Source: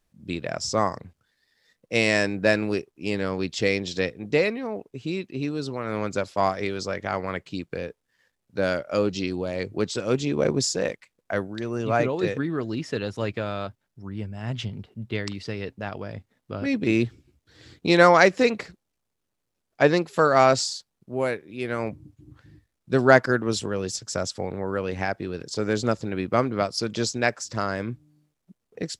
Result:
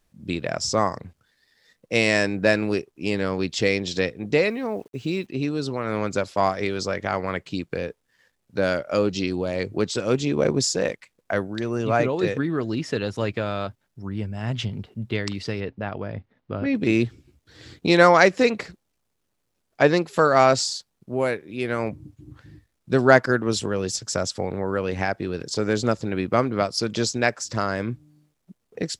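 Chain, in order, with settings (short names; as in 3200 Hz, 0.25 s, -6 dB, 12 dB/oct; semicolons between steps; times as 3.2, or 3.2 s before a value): in parallel at -3 dB: compressor, threshold -30 dBFS, peak gain reduction 18.5 dB; 4.49–5.27 on the sum: requantised 10-bit, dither none; 15.6–16.75 air absorption 240 m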